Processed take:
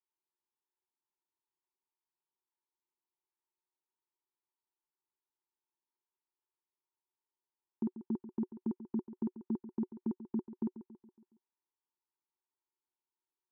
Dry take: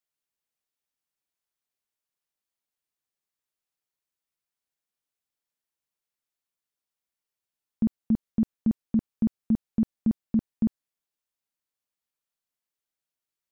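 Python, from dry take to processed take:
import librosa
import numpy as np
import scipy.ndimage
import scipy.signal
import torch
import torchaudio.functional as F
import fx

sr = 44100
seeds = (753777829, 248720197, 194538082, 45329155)

y = fx.double_bandpass(x, sr, hz=580.0, octaves=1.3)
y = fx.echo_feedback(y, sr, ms=139, feedback_pct=51, wet_db=-13.0)
y = y * librosa.db_to_amplitude(5.5)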